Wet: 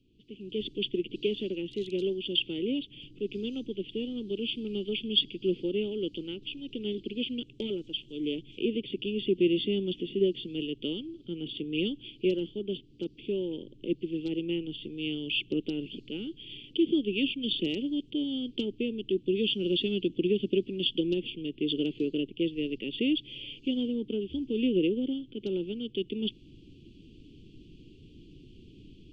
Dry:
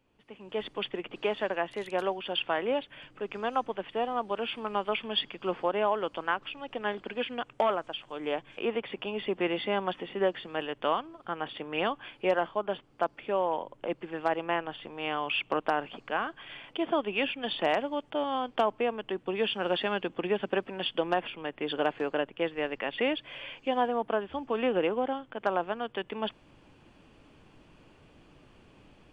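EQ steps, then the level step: elliptic band-stop 370–3100 Hz, stop band 40 dB; air absorption 120 m; +7.5 dB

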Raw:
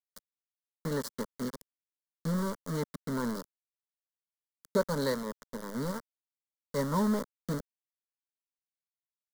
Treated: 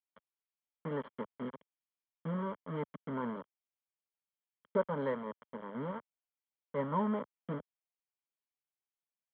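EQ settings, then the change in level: HPF 91 Hz 12 dB/oct; rippled Chebyshev low-pass 3300 Hz, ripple 6 dB; 0.0 dB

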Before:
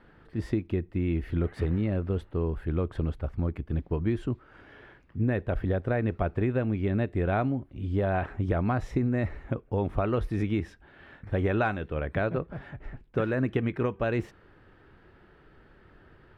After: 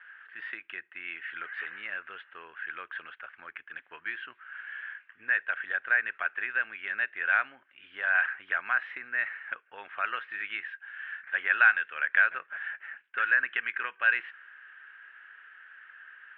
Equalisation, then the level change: resonant high-pass 1600 Hz, resonance Q 6.6; synth low-pass 2900 Hz, resonance Q 3.4; air absorption 320 m; 0.0 dB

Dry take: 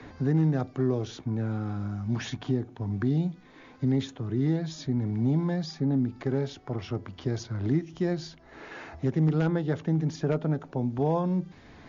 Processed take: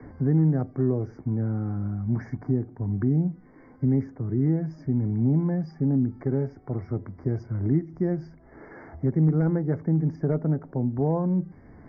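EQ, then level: Chebyshev band-stop 2200–4800 Hz, order 5; air absorption 300 m; tilt shelf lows +4 dB, about 710 Hz; 0.0 dB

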